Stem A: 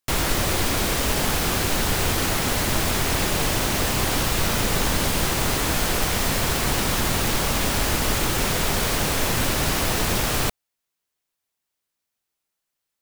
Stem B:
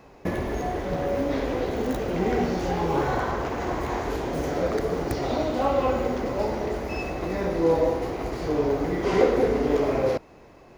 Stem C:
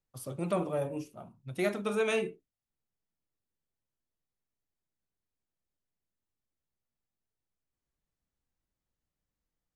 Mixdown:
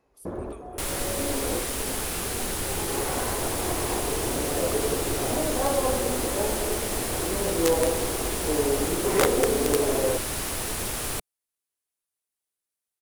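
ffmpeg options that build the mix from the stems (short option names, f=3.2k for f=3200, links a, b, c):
-filter_complex "[0:a]adelay=700,volume=-9.5dB[a];[1:a]afwtdn=0.0251,volume=-3dB[b];[2:a]highpass=1.1k,volume=-12dB,asplit=2[c][d];[d]apad=whole_len=475243[e];[b][e]sidechaincompress=threshold=-54dB:ratio=10:attack=8:release=1330[f];[a][f][c]amix=inputs=3:normalize=0,equalizer=f=160:t=o:w=0.67:g=-4,equalizer=f=400:t=o:w=0.67:g=3,equalizer=f=10k:t=o:w=0.67:g=10,aeval=exprs='(mod(3.98*val(0)+1,2)-1)/3.98':c=same"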